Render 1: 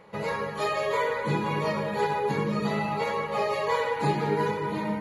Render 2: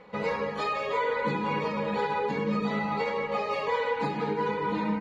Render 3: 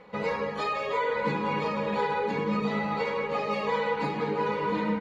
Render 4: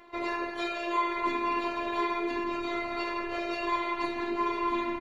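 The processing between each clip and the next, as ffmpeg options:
ffmpeg -i in.wav -af "alimiter=limit=-20dB:level=0:latency=1:release=213,lowpass=5000,aecho=1:1:4:0.6" out.wav
ffmpeg -i in.wav -af "aecho=1:1:1010:0.335" out.wav
ffmpeg -i in.wav -filter_complex "[0:a]asubboost=boost=11.5:cutoff=52,afftfilt=real='hypot(re,im)*cos(PI*b)':imag='0':win_size=512:overlap=0.75,asplit=2[link_01][link_02];[link_02]adelay=160,highpass=300,lowpass=3400,asoftclip=type=hard:threshold=-28dB,volume=-20dB[link_03];[link_01][link_03]amix=inputs=2:normalize=0,volume=4dB" out.wav

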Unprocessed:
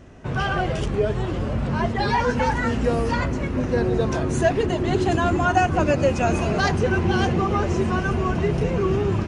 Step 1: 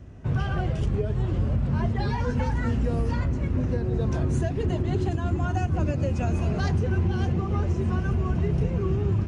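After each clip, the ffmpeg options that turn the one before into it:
ffmpeg -i in.wav -filter_complex "[0:a]acrossover=split=420|3000[link_01][link_02][link_03];[link_02]acompressor=threshold=-21dB:ratio=6[link_04];[link_01][link_04][link_03]amix=inputs=3:normalize=0,equalizer=frequency=79:width_type=o:width=2.9:gain=13.5,alimiter=limit=-7.5dB:level=0:latency=1:release=422,volume=-8dB" out.wav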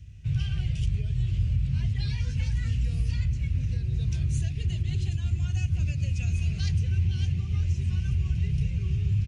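ffmpeg -i in.wav -af "firequalizer=gain_entry='entry(120,0);entry(250,-20);entry(900,-27);entry(2400,2)':delay=0.05:min_phase=1" out.wav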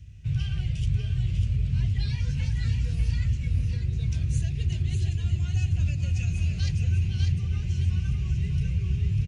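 ffmpeg -i in.wav -af "aecho=1:1:597:0.501" out.wav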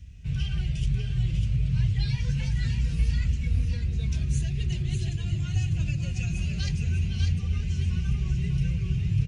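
ffmpeg -i in.wav -af "flanger=delay=4.1:depth=2.4:regen=-28:speed=0.27:shape=triangular,volume=5.5dB" out.wav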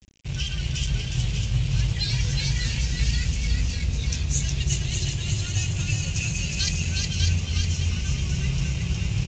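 ffmpeg -i in.wav -af "aresample=16000,aeval=exprs='sgn(val(0))*max(abs(val(0))-0.00891,0)':channel_layout=same,aresample=44100,crystalizer=i=6.5:c=0,aecho=1:1:364:0.668" out.wav

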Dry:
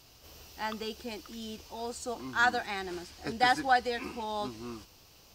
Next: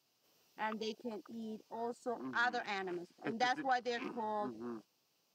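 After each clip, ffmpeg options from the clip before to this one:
ffmpeg -i in.wav -af "highpass=frequency=150:width=0.5412,highpass=frequency=150:width=1.3066,afwtdn=0.00708,acompressor=threshold=-31dB:ratio=2.5,volume=-2.5dB" out.wav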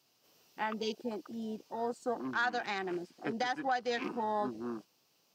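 ffmpeg -i in.wav -af "alimiter=level_in=3.5dB:limit=-24dB:level=0:latency=1:release=237,volume=-3.5dB,volume=5.5dB" out.wav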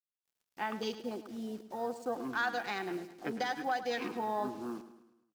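ffmpeg -i in.wav -filter_complex "[0:a]acrusher=bits=8:mix=0:aa=0.5,asplit=2[link_01][link_02];[link_02]aecho=0:1:106|212|318|424|530:0.224|0.112|0.056|0.028|0.014[link_03];[link_01][link_03]amix=inputs=2:normalize=0,volume=-1dB" out.wav

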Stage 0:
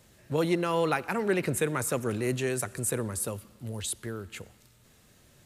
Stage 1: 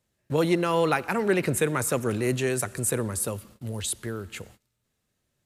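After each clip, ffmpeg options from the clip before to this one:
ffmpeg -i in.wav -af "agate=range=-21dB:threshold=-53dB:ratio=16:detection=peak,volume=3.5dB" out.wav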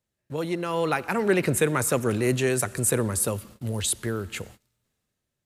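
ffmpeg -i in.wav -af "dynaudnorm=framelen=260:gausssize=7:maxgain=13dB,volume=-7dB" out.wav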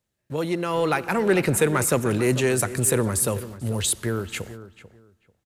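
ffmpeg -i in.wav -filter_complex "[0:a]asplit=2[link_01][link_02];[link_02]asoftclip=type=hard:threshold=-22dB,volume=-8dB[link_03];[link_01][link_03]amix=inputs=2:normalize=0,asplit=2[link_04][link_05];[link_05]adelay=441,lowpass=frequency=2100:poles=1,volume=-14dB,asplit=2[link_06][link_07];[link_07]adelay=441,lowpass=frequency=2100:poles=1,volume=0.21[link_08];[link_04][link_06][link_08]amix=inputs=3:normalize=0" out.wav

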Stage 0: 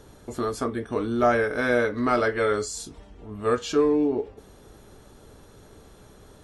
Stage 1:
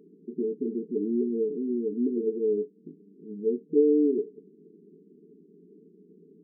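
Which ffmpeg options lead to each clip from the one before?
ffmpeg -i in.wav -af "afftfilt=real='re*between(b*sr/4096,160,460)':imag='im*between(b*sr/4096,160,460)':win_size=4096:overlap=0.75" out.wav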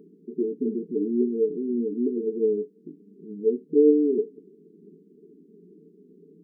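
ffmpeg -i in.wav -af "flanger=delay=0.1:depth=8:regen=57:speed=0.41:shape=triangular,volume=6.5dB" out.wav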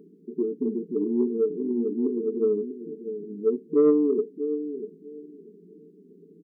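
ffmpeg -i in.wav -af "aecho=1:1:644|1288|1932:0.282|0.0535|0.0102,asoftclip=type=tanh:threshold=-10dB" out.wav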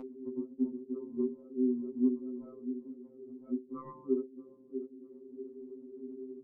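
ffmpeg -i in.wav -af "lowpass=1100,acompressor=mode=upward:threshold=-26dB:ratio=2.5,afftfilt=real='re*2.45*eq(mod(b,6),0)':imag='im*2.45*eq(mod(b,6),0)':win_size=2048:overlap=0.75,volume=-3dB" out.wav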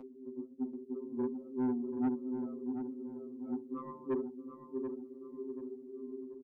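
ffmpeg -i in.wav -filter_complex "[0:a]acrossover=split=130[link_01][link_02];[link_02]dynaudnorm=framelen=590:gausssize=3:maxgain=6.5dB[link_03];[link_01][link_03]amix=inputs=2:normalize=0,asoftclip=type=tanh:threshold=-22dB,asplit=2[link_04][link_05];[link_05]adelay=734,lowpass=frequency=1200:poles=1,volume=-7dB,asplit=2[link_06][link_07];[link_07]adelay=734,lowpass=frequency=1200:poles=1,volume=0.42,asplit=2[link_08][link_09];[link_09]adelay=734,lowpass=frequency=1200:poles=1,volume=0.42,asplit=2[link_10][link_11];[link_11]adelay=734,lowpass=frequency=1200:poles=1,volume=0.42,asplit=2[link_12][link_13];[link_13]adelay=734,lowpass=frequency=1200:poles=1,volume=0.42[link_14];[link_04][link_06][link_08][link_10][link_12][link_14]amix=inputs=6:normalize=0,volume=-5.5dB" out.wav

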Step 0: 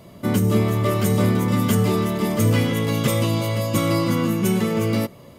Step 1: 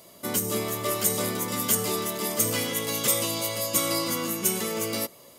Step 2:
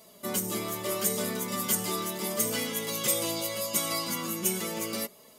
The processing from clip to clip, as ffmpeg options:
ffmpeg -i in.wav -af "bass=frequency=250:gain=-14,treble=frequency=4000:gain=13,volume=-5dB" out.wav
ffmpeg -i in.wav -af "flanger=delay=4.5:depth=1.5:regen=18:speed=0.76:shape=triangular" out.wav

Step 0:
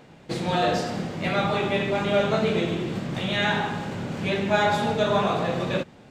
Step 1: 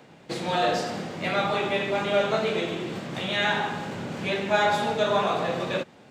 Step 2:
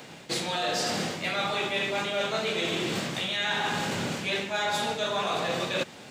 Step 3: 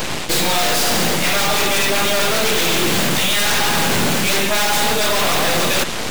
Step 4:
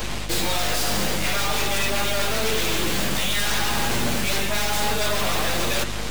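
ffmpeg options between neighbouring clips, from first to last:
ffmpeg -i in.wav -filter_complex "[0:a]highpass=frequency=160:poles=1,acrossover=split=360|600|1500[link_01][link_02][link_03][link_04];[link_01]alimiter=level_in=3.5dB:limit=-24dB:level=0:latency=1:release=443,volume=-3.5dB[link_05];[link_05][link_02][link_03][link_04]amix=inputs=4:normalize=0" out.wav
ffmpeg -i in.wav -af "highshelf=frequency=2300:gain=12,areverse,acompressor=threshold=-29dB:ratio=10,areverse,volume=3.5dB" out.wav
ffmpeg -i in.wav -af "aeval=exprs='0.178*sin(PI/2*4.47*val(0)/0.178)':channel_layout=same,aeval=exprs='0.188*(cos(1*acos(clip(val(0)/0.188,-1,1)))-cos(1*PI/2))+0.075*(cos(8*acos(clip(val(0)/0.188,-1,1)))-cos(8*PI/2))':channel_layout=same" out.wav
ffmpeg -i in.wav -af "flanger=delay=8.5:depth=1.1:regen=51:speed=0.5:shape=sinusoidal,aeval=exprs='val(0)+0.0355*(sin(2*PI*50*n/s)+sin(2*PI*2*50*n/s)/2+sin(2*PI*3*50*n/s)/3+sin(2*PI*4*50*n/s)/4+sin(2*PI*5*50*n/s)/5)':channel_layout=same,volume=-3dB" out.wav

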